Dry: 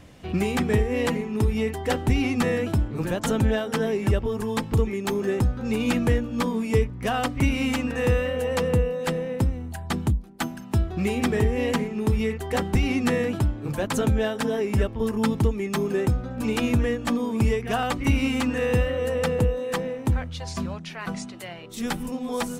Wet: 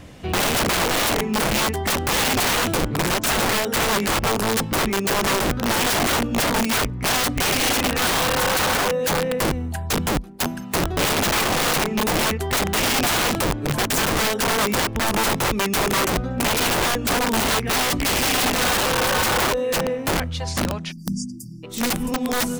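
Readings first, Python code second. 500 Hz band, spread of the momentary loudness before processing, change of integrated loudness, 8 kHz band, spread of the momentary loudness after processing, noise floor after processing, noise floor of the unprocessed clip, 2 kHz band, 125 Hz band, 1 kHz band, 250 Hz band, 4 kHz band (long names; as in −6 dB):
+1.5 dB, 7 LU, +4.5 dB, +15.5 dB, 6 LU, −33 dBFS, −38 dBFS, +9.5 dB, −3.0 dB, +9.5 dB, 0.0 dB, +13.5 dB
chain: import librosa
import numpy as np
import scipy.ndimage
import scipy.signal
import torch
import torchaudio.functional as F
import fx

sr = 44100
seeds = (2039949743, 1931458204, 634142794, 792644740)

y = fx.spec_erase(x, sr, start_s=20.92, length_s=0.71, low_hz=340.0, high_hz=4600.0)
y = (np.mod(10.0 ** (22.0 / 20.0) * y + 1.0, 2.0) - 1.0) / 10.0 ** (22.0 / 20.0)
y = F.gain(torch.from_numpy(y), 6.5).numpy()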